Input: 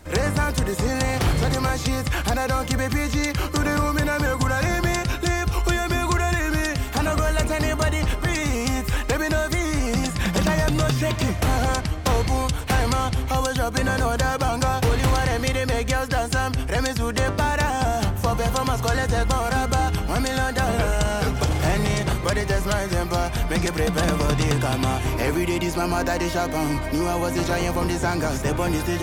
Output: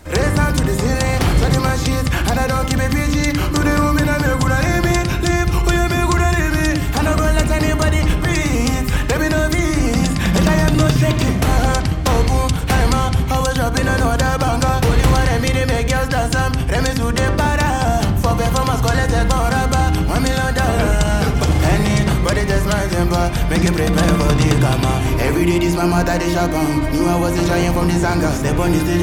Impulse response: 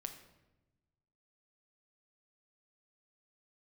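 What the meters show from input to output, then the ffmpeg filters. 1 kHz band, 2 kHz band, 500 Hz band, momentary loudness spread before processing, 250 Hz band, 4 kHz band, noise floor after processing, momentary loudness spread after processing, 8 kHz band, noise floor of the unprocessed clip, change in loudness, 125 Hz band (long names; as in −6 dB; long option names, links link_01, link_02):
+5.0 dB, +5.0 dB, +5.5 dB, 2 LU, +7.5 dB, +4.5 dB, −20 dBFS, 3 LU, +4.5 dB, −29 dBFS, +6.5 dB, +7.5 dB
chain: -filter_complex "[0:a]asplit=2[link_01][link_02];[link_02]lowshelf=frequency=400:width_type=q:width=1.5:gain=8[link_03];[1:a]atrim=start_sample=2205,lowpass=3700,adelay=63[link_04];[link_03][link_04]afir=irnorm=-1:irlink=0,volume=-6.5dB[link_05];[link_01][link_05]amix=inputs=2:normalize=0,volume=4.5dB"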